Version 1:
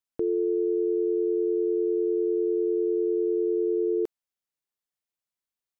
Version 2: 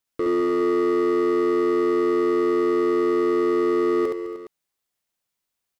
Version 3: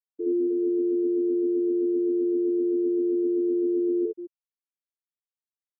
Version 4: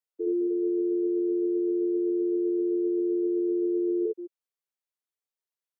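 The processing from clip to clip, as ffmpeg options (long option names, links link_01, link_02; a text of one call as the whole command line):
ffmpeg -i in.wav -filter_complex "[0:a]asoftclip=type=hard:threshold=-28dB,asplit=2[link_01][link_02];[link_02]aecho=0:1:69|207|208|276|305|414:0.708|0.119|0.178|0.119|0.188|0.178[link_03];[link_01][link_03]amix=inputs=2:normalize=0,volume=7.5dB" out.wav
ffmpeg -i in.wav -filter_complex "[0:a]acrossover=split=520[link_01][link_02];[link_02]adelay=60[link_03];[link_01][link_03]amix=inputs=2:normalize=0,afftfilt=real='re*gte(hypot(re,im),0.316)':imag='im*gte(hypot(re,im),0.316)':win_size=1024:overlap=0.75,volume=-1dB" out.wav
ffmpeg -i in.wav -filter_complex "[0:a]lowshelf=frequency=290:width_type=q:width=1.5:gain=-12,acrossover=split=270[link_01][link_02];[link_01]alimiter=level_in=15dB:limit=-24dB:level=0:latency=1,volume=-15dB[link_03];[link_03][link_02]amix=inputs=2:normalize=0" out.wav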